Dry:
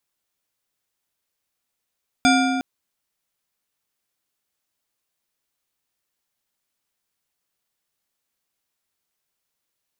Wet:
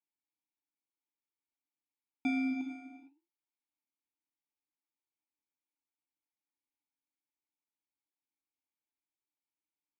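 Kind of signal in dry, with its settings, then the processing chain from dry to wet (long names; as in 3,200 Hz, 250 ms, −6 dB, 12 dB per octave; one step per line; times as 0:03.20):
struck metal bar, length 0.36 s, lowest mode 263 Hz, modes 8, decay 2.48 s, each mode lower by 2 dB, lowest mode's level −15 dB
flanger 0.98 Hz, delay 4.8 ms, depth 7.5 ms, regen +82%
formant filter u
reverb whose tail is shaped and stops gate 490 ms flat, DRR 7.5 dB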